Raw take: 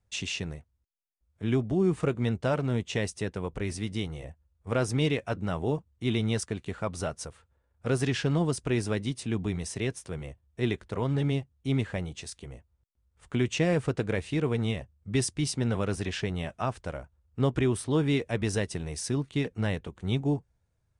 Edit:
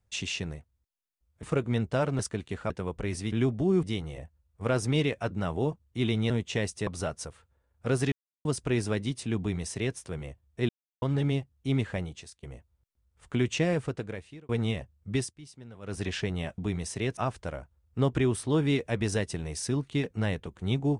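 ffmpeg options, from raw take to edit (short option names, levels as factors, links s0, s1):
-filter_complex "[0:a]asplit=18[s0][s1][s2][s3][s4][s5][s6][s7][s8][s9][s10][s11][s12][s13][s14][s15][s16][s17];[s0]atrim=end=1.432[s18];[s1]atrim=start=1.938:end=2.702[s19];[s2]atrim=start=6.358:end=6.872[s20];[s3]atrim=start=3.268:end=3.892[s21];[s4]atrim=start=1.428:end=1.942[s22];[s5]atrim=start=3.888:end=6.362[s23];[s6]atrim=start=2.698:end=3.272[s24];[s7]atrim=start=6.868:end=8.12,asetpts=PTS-STARTPTS,afade=t=out:st=1.248:d=0.004:c=hsin[s25];[s8]atrim=start=8.12:end=8.45,asetpts=PTS-STARTPTS,volume=0[s26];[s9]atrim=start=8.45:end=10.69,asetpts=PTS-STARTPTS,afade=t=in:d=0.004:c=hsin,afade=t=out:st=2.236:d=0.004:c=hsin[s27];[s10]atrim=start=10.69:end=11.02,asetpts=PTS-STARTPTS,volume=0[s28];[s11]atrim=start=11.02:end=12.43,asetpts=PTS-STARTPTS,afade=t=in:d=0.004:c=hsin,afade=t=out:st=0.99:d=0.42:silence=0.112202[s29];[s12]atrim=start=12.43:end=14.49,asetpts=PTS-STARTPTS,afade=t=in:d=0.004:c=hsin:silence=0.112202,afade=t=out:st=1.11:d=0.95[s30];[s13]atrim=start=14.49:end=15.34,asetpts=PTS-STARTPTS,afade=t=in:d=0.004:c=hsin,afade=t=out:st=0.63:d=0.22:silence=0.112202[s31];[s14]atrim=start=15.34:end=15.81,asetpts=PTS-STARTPTS,volume=0.112[s32];[s15]atrim=start=15.81:end=16.582,asetpts=PTS-STARTPTS,afade=t=in:d=0.22:silence=0.112202[s33];[s16]atrim=start=9.378:end=9.972[s34];[s17]atrim=start=16.578[s35];[s18][s19]acrossfade=d=0.004:c1=hsin:c2=hsin[s36];[s36][s20]acrossfade=d=0.004:c1=hsin:c2=hsin[s37];[s37][s21]acrossfade=d=0.004:c1=hsin:c2=hsin[s38];[s38][s22]acrossfade=d=0.004:c1=hsin:c2=hsin[s39];[s39][s23]acrossfade=d=0.004:c1=hsin:c2=hsin[s40];[s40][s24]acrossfade=d=0.004:c1=hsin:c2=hsin[s41];[s25][s26][s27][s28][s29][s30][s31][s32][s33]concat=n=9:v=0:a=1[s42];[s41][s42]acrossfade=d=0.004:c1=hsin:c2=hsin[s43];[s43][s34]acrossfade=d=0.004:c1=hsin:c2=hsin[s44];[s44][s35]acrossfade=d=0.004:c1=hsin:c2=hsin"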